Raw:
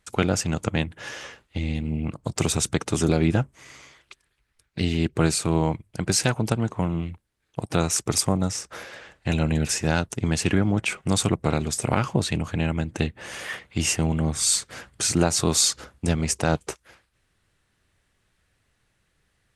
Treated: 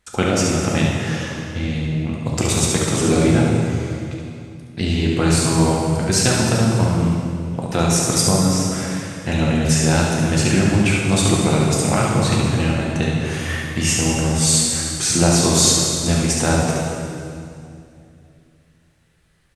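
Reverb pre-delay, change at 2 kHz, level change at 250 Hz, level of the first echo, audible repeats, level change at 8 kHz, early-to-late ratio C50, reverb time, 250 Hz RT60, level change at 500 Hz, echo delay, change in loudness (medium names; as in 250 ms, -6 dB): 3 ms, +6.5 dB, +7.5 dB, -5.0 dB, 1, +7.0 dB, -1.5 dB, 2.5 s, 3.1 s, +7.0 dB, 71 ms, +6.5 dB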